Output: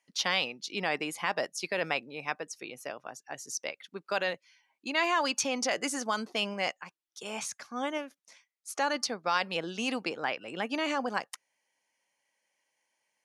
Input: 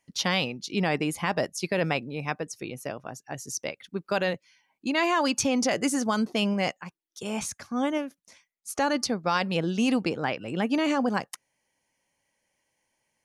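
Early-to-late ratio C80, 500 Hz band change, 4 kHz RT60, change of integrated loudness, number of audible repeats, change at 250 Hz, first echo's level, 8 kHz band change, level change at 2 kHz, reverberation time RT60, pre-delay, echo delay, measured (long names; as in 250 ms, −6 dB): no reverb audible, −5.5 dB, no reverb audible, −4.5 dB, no echo audible, −11.0 dB, no echo audible, −3.0 dB, −1.5 dB, no reverb audible, no reverb audible, no echo audible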